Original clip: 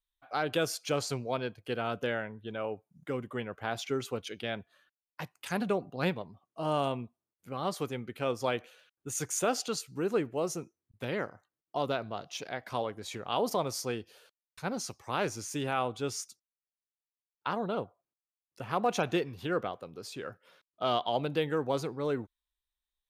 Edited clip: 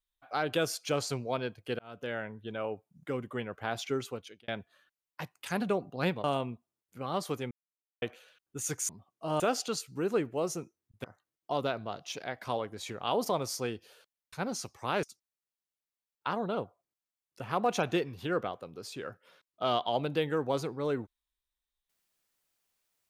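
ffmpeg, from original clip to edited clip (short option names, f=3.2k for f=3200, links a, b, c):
-filter_complex "[0:a]asplit=10[a][b][c][d][e][f][g][h][i][j];[a]atrim=end=1.79,asetpts=PTS-STARTPTS,afade=t=out:st=1.786:d=0.004:c=hsin[k];[b]atrim=start=1.79:end=4.48,asetpts=PTS-STARTPTS,afade=t=in:d=0.5,afade=t=out:st=2.17:d=0.52[l];[c]atrim=start=4.48:end=6.242,asetpts=PTS-STARTPTS,afade=t=in:d=0.004:c=hsin[m];[d]atrim=start=6.748:end=8.02,asetpts=PTS-STARTPTS,afade=t=out:st=1.268:d=0.004:c=hsin[n];[e]atrim=start=8.02:end=8.53,asetpts=PTS-STARTPTS,volume=0[o];[f]atrim=start=8.53:end=9.402,asetpts=PTS-STARTPTS,afade=t=in:d=0.004:c=hsin[p];[g]atrim=start=6.238:end=6.752[q];[h]atrim=start=9.398:end=11.042[r];[i]atrim=start=11.288:end=15.282[s];[j]atrim=start=16.228[t];[k][l][m]concat=n=3:v=0:a=1[u];[n][o][p]concat=n=3:v=0:a=1[v];[u][v]acrossfade=d=0.004:c1=hsin:c2=hsin[w];[w][q]acrossfade=d=0.004:c1=hsin:c2=hsin[x];[x][r]acrossfade=d=0.004:c1=hsin:c2=hsin[y];[y][s]acrossfade=d=0.004:c1=hsin:c2=hsin[z];[z][t]acrossfade=d=0.004:c1=hsin:c2=hsin"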